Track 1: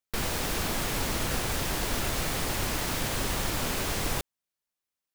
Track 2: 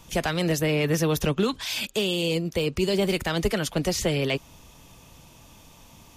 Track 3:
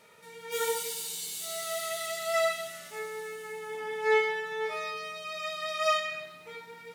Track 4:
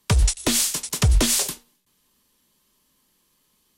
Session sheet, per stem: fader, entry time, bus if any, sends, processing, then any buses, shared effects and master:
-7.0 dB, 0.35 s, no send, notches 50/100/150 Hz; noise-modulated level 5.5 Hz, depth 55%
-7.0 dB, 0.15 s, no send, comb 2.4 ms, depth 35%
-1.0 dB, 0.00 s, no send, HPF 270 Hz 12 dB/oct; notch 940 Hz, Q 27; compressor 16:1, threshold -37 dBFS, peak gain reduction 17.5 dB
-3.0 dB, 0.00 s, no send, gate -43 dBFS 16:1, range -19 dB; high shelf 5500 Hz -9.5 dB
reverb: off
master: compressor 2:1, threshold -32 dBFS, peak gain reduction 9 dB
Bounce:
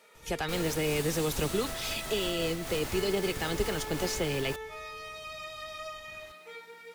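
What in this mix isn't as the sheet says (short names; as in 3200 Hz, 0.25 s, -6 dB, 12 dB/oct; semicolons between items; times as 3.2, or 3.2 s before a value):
stem 4: muted; master: missing compressor 2:1, threshold -32 dBFS, peak gain reduction 9 dB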